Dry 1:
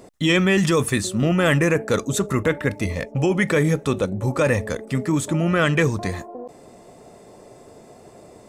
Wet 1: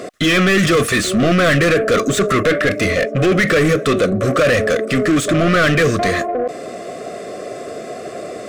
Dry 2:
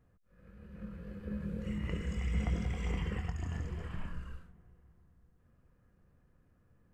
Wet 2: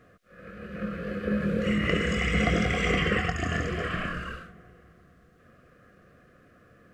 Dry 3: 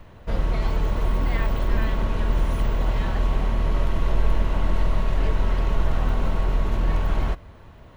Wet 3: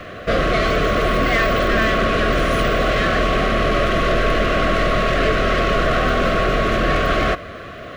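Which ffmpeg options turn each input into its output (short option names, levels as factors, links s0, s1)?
-filter_complex "[0:a]asplit=2[s0][s1];[s1]highpass=f=720:p=1,volume=28.2,asoftclip=type=tanh:threshold=0.501[s2];[s0][s2]amix=inputs=2:normalize=0,lowpass=f=2500:p=1,volume=0.501,asuperstop=centerf=900:order=8:qfactor=2.7"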